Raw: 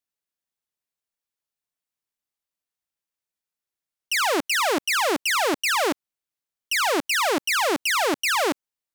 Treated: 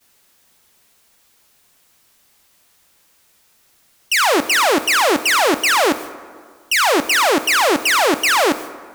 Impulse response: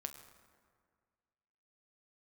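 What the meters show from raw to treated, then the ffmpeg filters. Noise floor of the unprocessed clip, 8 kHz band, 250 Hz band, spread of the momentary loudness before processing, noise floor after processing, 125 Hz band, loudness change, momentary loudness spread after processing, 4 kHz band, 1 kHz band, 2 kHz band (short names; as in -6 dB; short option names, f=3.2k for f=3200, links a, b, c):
under -85 dBFS, +7.0 dB, +7.5 dB, 5 LU, -57 dBFS, n/a, +7.0 dB, 5 LU, +7.0 dB, +7.5 dB, +7.5 dB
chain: -filter_complex "[0:a]aeval=exprs='val(0)+0.5*0.0141*sgn(val(0))':c=same,agate=range=-33dB:threshold=-34dB:ratio=3:detection=peak,asplit=2[a][b];[1:a]atrim=start_sample=2205[c];[b][c]afir=irnorm=-1:irlink=0,volume=4.5dB[d];[a][d]amix=inputs=2:normalize=0"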